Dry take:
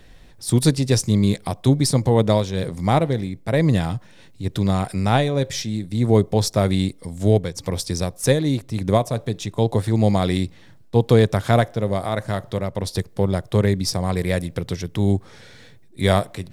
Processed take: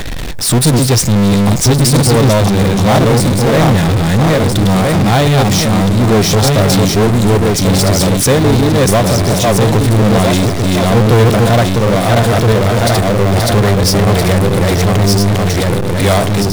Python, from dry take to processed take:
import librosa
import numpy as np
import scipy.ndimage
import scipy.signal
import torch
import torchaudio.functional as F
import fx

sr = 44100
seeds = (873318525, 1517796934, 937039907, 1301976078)

y = fx.reverse_delay_fb(x, sr, ms=659, feedback_pct=51, wet_db=-2.0)
y = fx.power_curve(y, sr, exponent=0.35)
y = y * librosa.db_to_amplitude(-2.0)